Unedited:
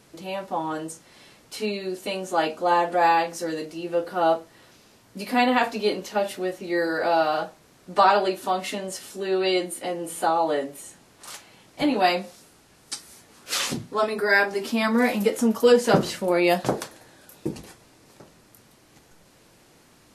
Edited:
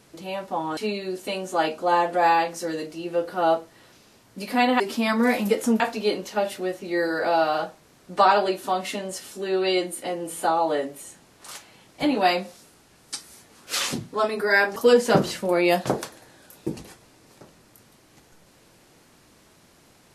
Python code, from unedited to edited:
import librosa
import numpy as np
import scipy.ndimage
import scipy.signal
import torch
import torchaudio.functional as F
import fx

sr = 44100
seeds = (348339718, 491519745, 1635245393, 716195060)

y = fx.edit(x, sr, fx.cut(start_s=0.77, length_s=0.79),
    fx.move(start_s=14.55, length_s=1.0, to_s=5.59), tone=tone)